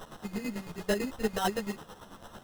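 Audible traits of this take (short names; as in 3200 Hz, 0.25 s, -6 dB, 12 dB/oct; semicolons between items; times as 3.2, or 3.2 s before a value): a quantiser's noise floor 8-bit, dither triangular; chopped level 9 Hz, depth 65%, duty 35%; aliases and images of a low sample rate 2300 Hz, jitter 0%; a shimmering, thickened sound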